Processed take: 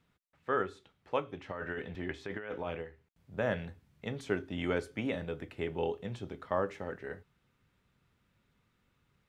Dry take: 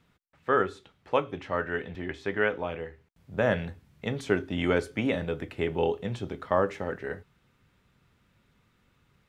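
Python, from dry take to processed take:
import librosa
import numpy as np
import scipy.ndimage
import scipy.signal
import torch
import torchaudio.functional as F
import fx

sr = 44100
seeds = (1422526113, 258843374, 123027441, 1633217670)

y = fx.over_compress(x, sr, threshold_db=-32.0, ratio=-1.0, at=(1.48, 2.81), fade=0.02)
y = y * librosa.db_to_amplitude(-7.0)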